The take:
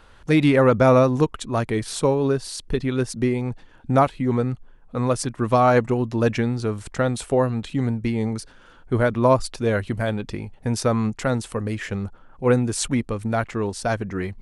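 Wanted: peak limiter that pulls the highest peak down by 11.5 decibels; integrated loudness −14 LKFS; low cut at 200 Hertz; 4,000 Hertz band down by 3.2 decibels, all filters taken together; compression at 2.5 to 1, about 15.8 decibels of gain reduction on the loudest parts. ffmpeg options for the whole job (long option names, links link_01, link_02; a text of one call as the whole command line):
ffmpeg -i in.wav -af "highpass=200,equalizer=frequency=4000:width_type=o:gain=-4,acompressor=threshold=-37dB:ratio=2.5,volume=26dB,alimiter=limit=-3dB:level=0:latency=1" out.wav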